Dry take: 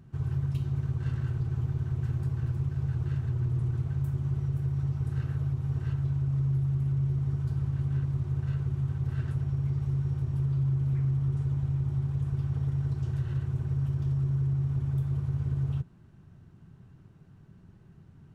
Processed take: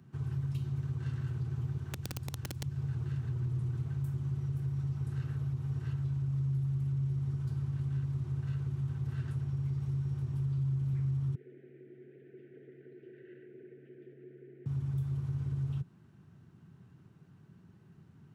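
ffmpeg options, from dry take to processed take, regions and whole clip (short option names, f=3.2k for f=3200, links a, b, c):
-filter_complex "[0:a]asettb=1/sr,asplit=3[a][b][c];[a]atrim=end=1.774[d];[b]atrim=start=1.77:end=2.64,asetpts=PTS-STARTPTS,afade=t=in:d=0.004:c=qsin,afade=t=out:st=0.866:d=0.004:c=qsin,equalizer=f=170:w=4:g=-12.5,bandreject=f=60:t=h:w=6,bandreject=f=120:t=h:w=6,bandreject=f=180:t=h:w=6,bandreject=f=240:t=h:w=6,bandreject=f=300:t=h:w=6,bandreject=f=360:t=h:w=6,bandreject=f=420:t=h:w=6,aeval=exprs='(mod(15*val(0)+1,2)-1)/15':c=same[e];[c]atrim=start=2.636[f];[d][e]acrossfade=d=0.004:c1=hsin:c2=qsin[g];[g][f]acrossfade=d=0.004:c1=qsin:c2=hsin,asettb=1/sr,asplit=3[h][i][j];[h]atrim=end=11.354[k];[i]atrim=start=11.35:end=14.66,asetpts=PTS-STARTPTS,afade=t=in:d=0.004:c=qsin,afade=t=out:st=3.306:d=0.004:c=qsin,asuperstop=centerf=1000:order=8:qfactor=0.87,highpass=f=320:w=0.5412,highpass=f=320:w=1.3066,equalizer=f=390:t=q:w=4:g=6,equalizer=f=590:t=q:w=4:g=-6,equalizer=f=830:t=q:w=4:g=6,lowpass=f=2k:w=0.5412,lowpass=f=2k:w=1.3066[l];[j]atrim=start=14.656[m];[k][l]acrossfade=d=0.004:c1=hsin:c2=qsin[n];[n][m]acrossfade=d=0.004:c1=qsin:c2=hsin,highpass=120,equalizer=f=610:t=o:w=0.77:g=-3.5,acrossover=split=180|3000[o][p][q];[p]acompressor=threshold=-44dB:ratio=6[r];[o][r][q]amix=inputs=3:normalize=0,volume=-1.5dB"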